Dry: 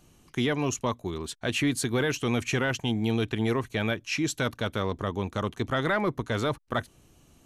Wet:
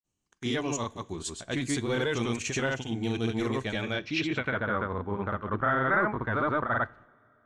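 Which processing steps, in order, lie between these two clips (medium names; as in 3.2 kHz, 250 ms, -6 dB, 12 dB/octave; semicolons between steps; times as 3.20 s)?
gate -52 dBFS, range -22 dB; granulator 155 ms, grains 20 per s, spray 100 ms, pitch spread up and down by 0 st; two-slope reverb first 0.33 s, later 3.1 s, from -20 dB, DRR 17 dB; low-pass sweep 7.6 kHz -> 1.5 kHz, 3.83–4.62 s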